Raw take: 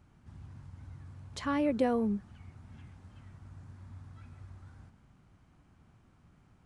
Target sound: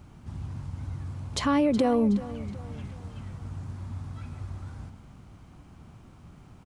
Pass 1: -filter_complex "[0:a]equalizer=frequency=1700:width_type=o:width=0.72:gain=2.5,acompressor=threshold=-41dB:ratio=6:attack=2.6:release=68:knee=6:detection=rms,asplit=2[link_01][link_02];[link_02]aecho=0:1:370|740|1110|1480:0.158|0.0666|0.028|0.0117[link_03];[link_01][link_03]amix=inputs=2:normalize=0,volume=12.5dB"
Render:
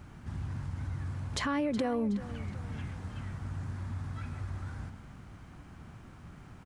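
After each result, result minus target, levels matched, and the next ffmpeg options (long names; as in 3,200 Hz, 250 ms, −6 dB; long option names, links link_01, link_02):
downward compressor: peak gain reduction +8 dB; 2,000 Hz band +5.5 dB
-filter_complex "[0:a]equalizer=frequency=1700:width_type=o:width=0.72:gain=2.5,acompressor=threshold=-31.5dB:ratio=6:attack=2.6:release=68:knee=6:detection=rms,asplit=2[link_01][link_02];[link_02]aecho=0:1:370|740|1110|1480:0.158|0.0666|0.028|0.0117[link_03];[link_01][link_03]amix=inputs=2:normalize=0,volume=12.5dB"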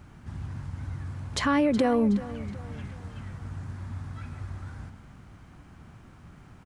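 2,000 Hz band +5.0 dB
-filter_complex "[0:a]equalizer=frequency=1700:width_type=o:width=0.72:gain=-5,acompressor=threshold=-31.5dB:ratio=6:attack=2.6:release=68:knee=6:detection=rms,asplit=2[link_01][link_02];[link_02]aecho=0:1:370|740|1110|1480:0.158|0.0666|0.028|0.0117[link_03];[link_01][link_03]amix=inputs=2:normalize=0,volume=12.5dB"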